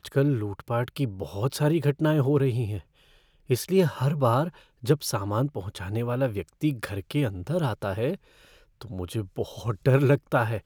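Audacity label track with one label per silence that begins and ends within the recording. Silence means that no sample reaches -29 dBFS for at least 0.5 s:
2.780000	3.500000	silence
8.150000	8.810000	silence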